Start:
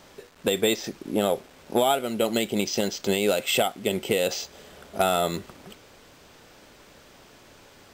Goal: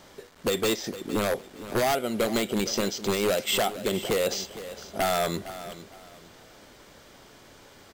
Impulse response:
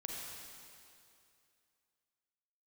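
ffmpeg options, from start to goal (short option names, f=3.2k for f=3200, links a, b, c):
-filter_complex "[0:a]bandreject=f=2.6k:w=14,aeval=exprs='0.126*(abs(mod(val(0)/0.126+3,4)-2)-1)':c=same,asplit=2[a][b];[b]aecho=0:1:459|918|1377:0.2|0.0519|0.0135[c];[a][c]amix=inputs=2:normalize=0"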